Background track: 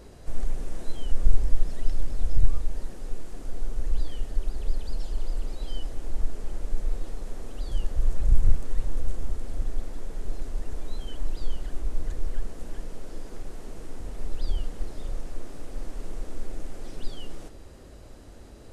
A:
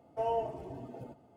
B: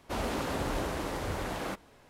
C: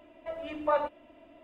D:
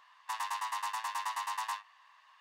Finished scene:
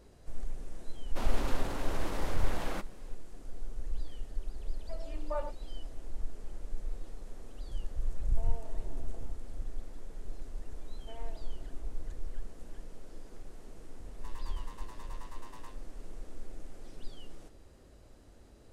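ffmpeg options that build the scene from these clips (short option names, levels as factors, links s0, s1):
-filter_complex "[1:a]asplit=2[s0][s1];[0:a]volume=0.316[s2];[2:a]alimiter=level_in=1.41:limit=0.0631:level=0:latency=1:release=21,volume=0.708[s3];[3:a]equalizer=f=460:t=o:w=1.9:g=6[s4];[s0]acompressor=threshold=0.0126:ratio=6:attack=3.2:release=140:knee=1:detection=peak[s5];[s1]asoftclip=type=tanh:threshold=0.0237[s6];[s3]atrim=end=2.09,asetpts=PTS-STARTPTS,volume=0.75,afade=t=in:d=0.004:c=hsin,afade=t=out:st=2.086:d=0.004:c=hsin,adelay=1060[s7];[s4]atrim=end=1.43,asetpts=PTS-STARTPTS,volume=0.188,afade=t=in:d=0.004:c=hsin,afade=t=out:st=1.426:d=0.004:c=hsin,adelay=4630[s8];[s5]atrim=end=1.36,asetpts=PTS-STARTPTS,volume=0.376,afade=t=in:d=0.004:c=hsin,afade=t=out:st=1.356:d=0.004:c=hsin,adelay=8200[s9];[s6]atrim=end=1.36,asetpts=PTS-STARTPTS,volume=0.188,afade=t=in:d=0.004:c=hsin,afade=t=out:st=1.356:d=0.004:c=hsin,adelay=480690S[s10];[4:a]atrim=end=2.4,asetpts=PTS-STARTPTS,volume=0.141,afade=t=in:d=0.004:c=hsin,afade=t=out:st=2.396:d=0.004:c=hsin,adelay=13950[s11];[s2][s7][s8][s9][s10][s11]amix=inputs=6:normalize=0"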